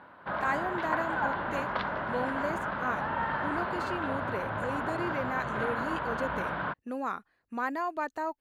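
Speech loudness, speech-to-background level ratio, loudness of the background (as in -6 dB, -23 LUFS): -36.0 LUFS, -3.0 dB, -33.0 LUFS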